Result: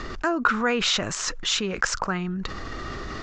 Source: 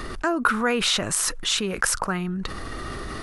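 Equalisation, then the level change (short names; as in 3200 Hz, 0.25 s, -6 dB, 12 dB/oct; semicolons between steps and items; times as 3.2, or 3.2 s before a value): Chebyshev low-pass 7300 Hz, order 6; 0.0 dB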